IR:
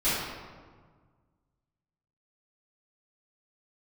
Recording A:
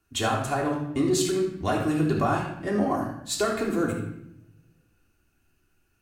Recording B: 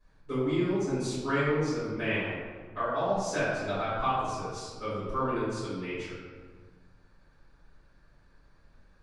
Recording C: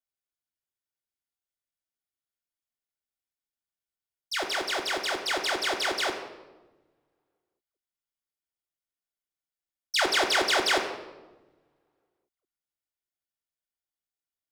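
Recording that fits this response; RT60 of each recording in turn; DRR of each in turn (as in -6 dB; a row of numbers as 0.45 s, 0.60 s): B; 0.75 s, 1.6 s, 1.2 s; -3.0 dB, -14.5 dB, -2.5 dB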